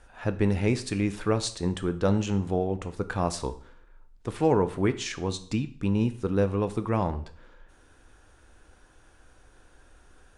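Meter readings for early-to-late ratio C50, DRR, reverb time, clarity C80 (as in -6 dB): 15.0 dB, 10.0 dB, 0.55 s, 18.0 dB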